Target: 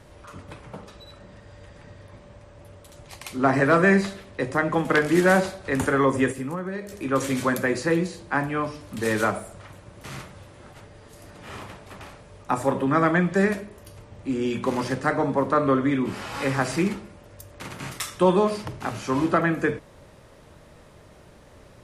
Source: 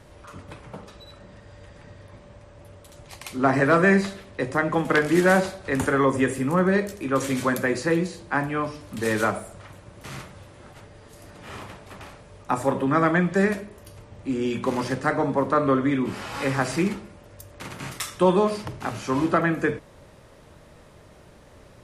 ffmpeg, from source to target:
-filter_complex "[0:a]asplit=3[a][b][c];[a]afade=t=out:st=6.31:d=0.02[d];[b]acompressor=threshold=-27dB:ratio=12,afade=t=in:st=6.31:d=0.02,afade=t=out:st=6.91:d=0.02[e];[c]afade=t=in:st=6.91:d=0.02[f];[d][e][f]amix=inputs=3:normalize=0"

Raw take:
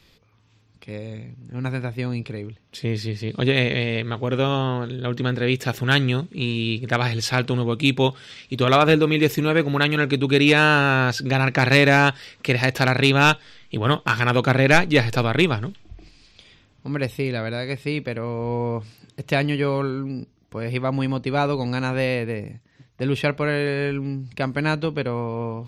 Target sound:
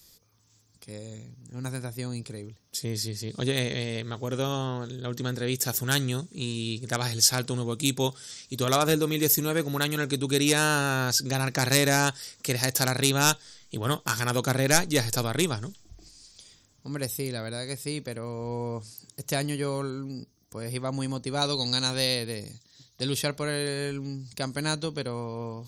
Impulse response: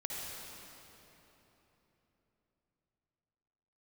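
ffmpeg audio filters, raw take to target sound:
-af "asetnsamples=n=441:p=0,asendcmd='21.42 equalizer g 5.5;23.14 equalizer g -4.5',equalizer=f=3.9k:w=1.5:g=-9.5,aexciter=amount=10.4:drive=4.3:freq=3.8k,volume=-7.5dB"

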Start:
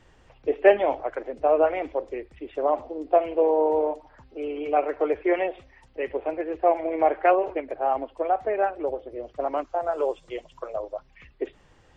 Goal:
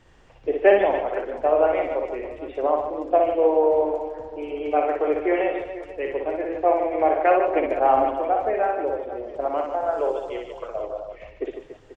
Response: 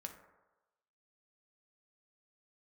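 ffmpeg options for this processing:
-filter_complex "[0:a]asettb=1/sr,asplit=3[a][b][c];[a]atrim=end=7.554[d];[b]atrim=start=7.55:end=8.11,asetpts=PTS-STARTPTS,afade=t=in:d=0.004:c=qsin,afade=t=out:st=0.556:d=0.004:c=qsin,acontrast=50[e];[c]atrim=start=8.106[f];[d][e]acrossfade=d=0.004:c1=hsin:c2=qsin[g];[g][f]acrossfade=d=0.004:c1=qsin:c2=hsin,aecho=1:1:60|150|285|487.5|791.2:0.631|0.398|0.251|0.158|0.1,asplit=2[h][i];[1:a]atrim=start_sample=2205,adelay=121[j];[i][j]afir=irnorm=-1:irlink=0,volume=-13dB[k];[h][k]amix=inputs=2:normalize=0"

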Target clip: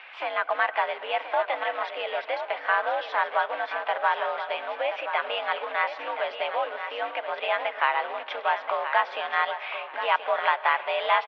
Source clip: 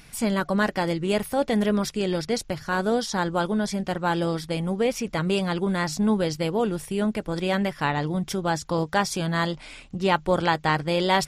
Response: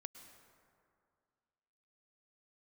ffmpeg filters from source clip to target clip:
-filter_complex "[0:a]acompressor=threshold=-30dB:ratio=3,acrusher=bits=4:mode=log:mix=0:aa=0.000001,asplit=2[a][b];[b]asetrate=55563,aresample=44100,atempo=0.793701,volume=-15dB[c];[a][c]amix=inputs=2:normalize=0,aecho=1:1:1028|2056|3084:0.335|0.077|0.0177,asplit=2[d][e];[1:a]atrim=start_sample=2205[f];[e][f]afir=irnorm=-1:irlink=0,volume=0.5dB[g];[d][g]amix=inputs=2:normalize=0,highpass=f=570:t=q:w=0.5412,highpass=f=570:t=q:w=1.307,lowpass=f=3k:t=q:w=0.5176,lowpass=f=3k:t=q:w=0.7071,lowpass=f=3k:t=q:w=1.932,afreqshift=76,volume=6dB"

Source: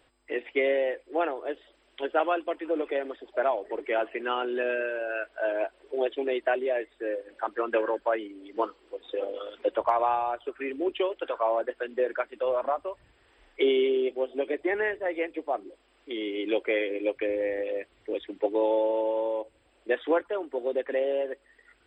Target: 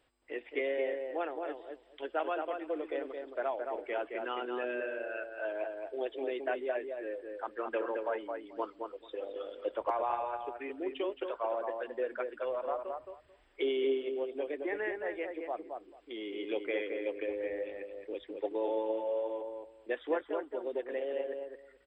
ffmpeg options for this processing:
-filter_complex "[0:a]asplit=2[a][b];[b]adelay=219,lowpass=f=1.8k:p=1,volume=-4dB,asplit=2[c][d];[d]adelay=219,lowpass=f=1.8k:p=1,volume=0.17,asplit=2[e][f];[f]adelay=219,lowpass=f=1.8k:p=1,volume=0.17[g];[a][c][e][g]amix=inputs=4:normalize=0,volume=-8.5dB"

